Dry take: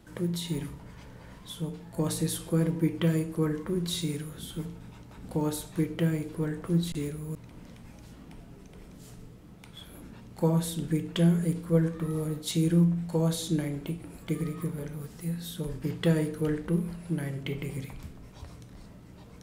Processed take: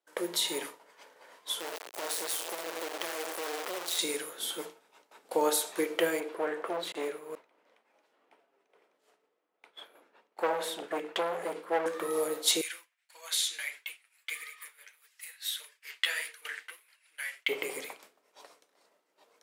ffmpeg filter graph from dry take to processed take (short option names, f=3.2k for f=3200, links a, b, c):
-filter_complex "[0:a]asettb=1/sr,asplit=3[a][b][c];[a]atrim=end=1.604[d];[b]atrim=start=1.6:end=3.99,asetpts=PTS-STARTPTS,afade=t=in:d=0.004:c=qsin,afade=t=out:st=2.386:d=0.004:c=qsin,highpass=f=61:p=1,acompressor=threshold=-32dB:ratio=6:attack=3.2:release=140:knee=1:detection=peak,acrusher=bits=4:dc=4:mix=0:aa=0.000001[e];[c]atrim=start=3.986[f];[d][e]acrossfade=d=0.004:c1=hsin:c2=qsin[g];[g][f]acrossfade=d=0.004:c1=qsin:c2=hsin,asettb=1/sr,asplit=3[h][i][j];[h]atrim=end=6.204[k];[i]atrim=start=6.2:end=11.86,asetpts=PTS-STARTPTS,afade=t=in:d=0.004:c=qsin,afade=t=out:st=5.656:d=0.004:c=qsin,highpass=48,asoftclip=type=hard:threshold=-28.5dB,bass=f=250:g=-2,treble=f=4k:g=-13[l];[j]atrim=start=11.856[m];[k][l]acrossfade=d=0.004:c1=hsin:c2=qsin[n];[n][m]acrossfade=d=0.004:c1=qsin:c2=hsin,asettb=1/sr,asplit=3[o][p][q];[o]atrim=end=12.614[r];[p]atrim=start=12.61:end=17.49,asetpts=PTS-STARTPTS,afade=t=in:d=0.004:c=qsin,afade=t=out:st=4.876:d=0.004:c=qsin,flanger=delay=1.8:depth=9.3:regen=-5:speed=1.6:shape=sinusoidal,highpass=f=2.1k:t=q:w=2[s];[q]atrim=start=17.486[t];[r][s]acrossfade=d=0.004:c1=hsin:c2=qsin[u];[u][t]acrossfade=d=0.004:c1=qsin:c2=hsin,highpass=f=450:w=0.5412,highpass=f=450:w=1.3066,agate=range=-33dB:threshold=-46dB:ratio=3:detection=peak,volume=8.5dB"